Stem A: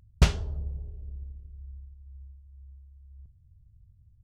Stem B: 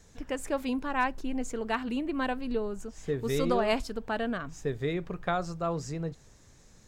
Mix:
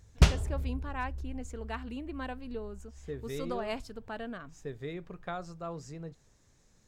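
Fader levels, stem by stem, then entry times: -0.5, -8.5 dB; 0.00, 0.00 s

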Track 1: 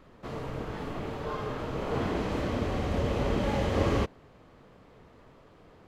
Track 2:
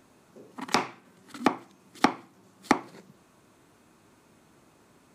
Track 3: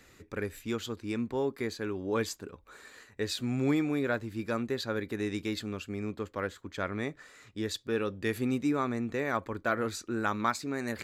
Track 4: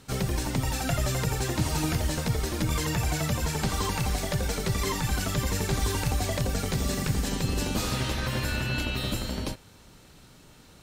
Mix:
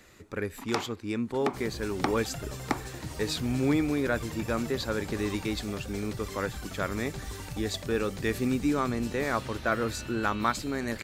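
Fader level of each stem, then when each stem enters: -19.5, -7.0, +2.0, -12.0 dB; 1.35, 0.00, 0.00, 1.45 s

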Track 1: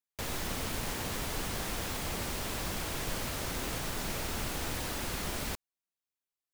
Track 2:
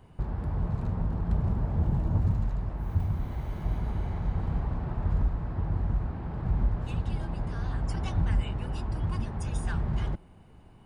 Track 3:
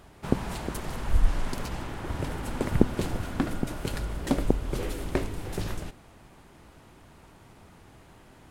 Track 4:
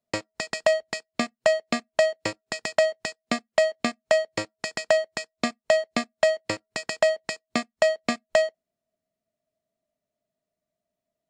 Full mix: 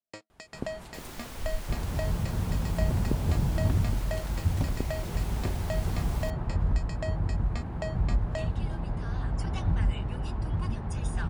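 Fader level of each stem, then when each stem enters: -8.5, 0.0, -11.5, -16.0 dB; 0.75, 1.50, 0.30, 0.00 s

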